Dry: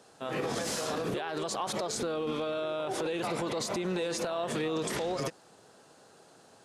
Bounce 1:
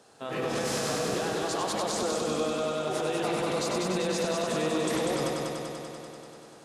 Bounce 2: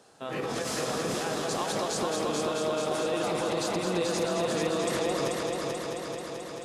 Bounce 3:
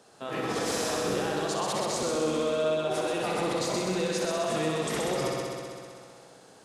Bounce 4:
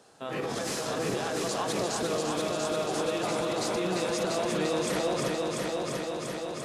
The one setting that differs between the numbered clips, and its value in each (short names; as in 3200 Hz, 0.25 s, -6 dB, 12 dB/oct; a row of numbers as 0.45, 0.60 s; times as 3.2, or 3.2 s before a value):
multi-head echo, time: 97, 218, 64, 345 ms